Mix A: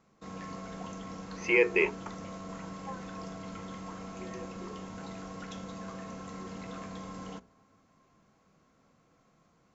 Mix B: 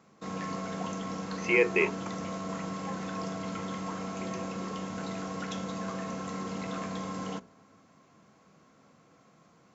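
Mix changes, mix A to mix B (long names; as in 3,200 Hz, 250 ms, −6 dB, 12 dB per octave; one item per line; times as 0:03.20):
background +6.5 dB
master: add high-pass filter 110 Hz 12 dB per octave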